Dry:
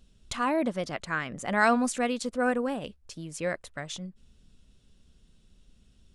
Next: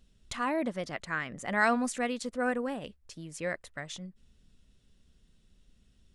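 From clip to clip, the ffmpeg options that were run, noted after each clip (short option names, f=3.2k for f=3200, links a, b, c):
-af "equalizer=f=1.9k:w=4.5:g=5,volume=-4dB"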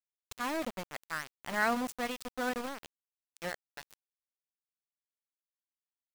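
-af "aeval=exprs='val(0)*gte(abs(val(0)),0.0299)':c=same,volume=-3.5dB"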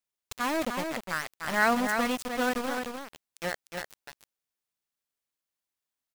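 -af "aecho=1:1:301:0.531,volume=5.5dB"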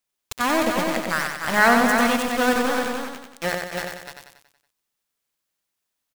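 -af "aecho=1:1:93|186|279|372|465|558:0.596|0.298|0.149|0.0745|0.0372|0.0186,volume=7dB"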